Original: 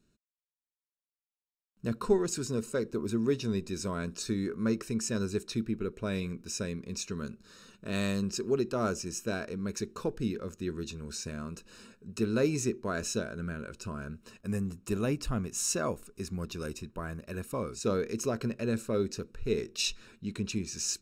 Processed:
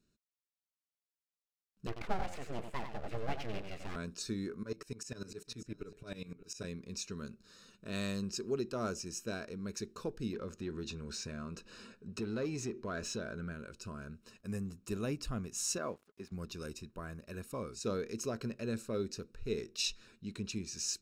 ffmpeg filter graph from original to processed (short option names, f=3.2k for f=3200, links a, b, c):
-filter_complex "[0:a]asettb=1/sr,asplit=3[a][b][c];[a]atrim=end=1.874[d];[b]atrim=start=1.87:end=3.96,asetpts=PTS-STARTPTS,afade=t=in:d=0.004:c=qsin,afade=t=out:st=2.086:d=0.004:c=qsin,highshelf=f=3.5k:t=q:w=3:g=-12.5,aecho=1:1:92:0.422,atrim=end_sample=92169,aeval=exprs='abs(val(0))':c=same[e];[c]atrim=start=3.956[f];[d][e]acrossfade=d=0.004:c1=hsin:c2=qsin[g];[g][f]acrossfade=d=0.004:c1=qsin:c2=hsin,asettb=1/sr,asplit=3[h][i][j];[h]atrim=end=4.634[k];[i]atrim=start=4.63:end=6.64,asetpts=PTS-STARTPTS,afade=t=in:d=0.004:c=qsin,afade=t=out:st=2.006:d=0.004:c=qsin,aecho=1:1:6.9:0.64,atrim=end_sample=88641,aecho=1:1:577:0.178,atrim=end_sample=88641,aeval=exprs='val(0)*pow(10,-19*if(lt(mod(-10*n/s,1),2*abs(-10)/1000),1-mod(-10*n/s,1)/(2*abs(-10)/1000),(mod(-10*n/s,1)-2*abs(-10)/1000)/(1-2*abs(-10)/1000))/20)':c=same[l];[j]atrim=start=6.636[m];[k][l]acrossfade=d=0.004:c1=hsin:c2=qsin[n];[n][m]acrossfade=d=0.004:c1=qsin:c2=hsin,asettb=1/sr,asplit=3[o][p][q];[o]atrim=end=10.334[r];[p]atrim=start=10.33:end=13.52,asetpts=PTS-STARTPTS,afade=t=in:d=0.004:c=qsin,afade=t=out:st=3.186:d=0.004:c=qsin,lowshelf=f=300:g=10,acompressor=threshold=-32dB:ratio=2:attack=3.2:release=140:knee=1:detection=peak,asplit=2[s][t];[t]highpass=f=720:p=1,volume=13dB,asoftclip=type=tanh:threshold=-20dB[u];[s][u]amix=inputs=2:normalize=0,lowpass=f=2.8k:p=1,volume=-6dB[v];[q]atrim=start=13.516[w];[r][v]acrossfade=d=0.004:c1=hsin:c2=qsin[x];[x][w]acrossfade=d=0.004:c1=qsin:c2=hsin,asettb=1/sr,asplit=3[y][z][aa];[y]atrim=end=15.784[ab];[z]atrim=start=15.78:end=16.32,asetpts=PTS-STARTPTS,afade=t=in:d=0.004:c=qsin,afade=t=out:st=0.536:d=0.004:c=qsin,highpass=120,bass=f=250:g=-4,treble=f=4k:g=-14,aeval=exprs='sgn(val(0))*max(abs(val(0))-0.00106,0)':c=same[ac];[aa]atrim=start=16.316[ad];[ab][ac]acrossfade=d=0.004:c1=hsin:c2=qsin[ae];[ae][ad]acrossfade=d=0.004:c1=qsin:c2=hsin,equalizer=f=4.8k:w=1.5:g=4,bandreject=f=900:w=23,volume=-6.5dB"